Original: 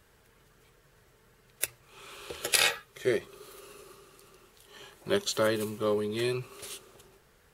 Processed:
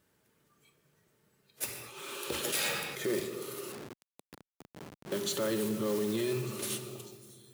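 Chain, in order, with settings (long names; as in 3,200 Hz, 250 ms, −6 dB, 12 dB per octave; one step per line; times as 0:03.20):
high-shelf EQ 5,800 Hz +6 dB
noise that follows the level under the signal 11 dB
delay with a high-pass on its return 596 ms, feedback 57%, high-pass 3,900 Hz, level −21 dB
noise reduction from a noise print of the clip's start 15 dB
in parallel at +1.5 dB: downward compressor, threshold −36 dBFS, peak gain reduction 19 dB
on the sum: soft clipping −17.5 dBFS, distortion −11 dB
low-shelf EQ 260 Hz +12 dB
on a send at −9 dB: convolution reverb RT60 2.0 s, pre-delay 3 ms
on the sum: brickwall limiter −20 dBFS, peak gain reduction 8.5 dB
0:03.72–0:05.12: comparator with hysteresis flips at −33 dBFS
Chebyshev high-pass filter 190 Hz, order 2
0:01.65–0:03.20: level that may fall only so fast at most 38 dB per second
level −3 dB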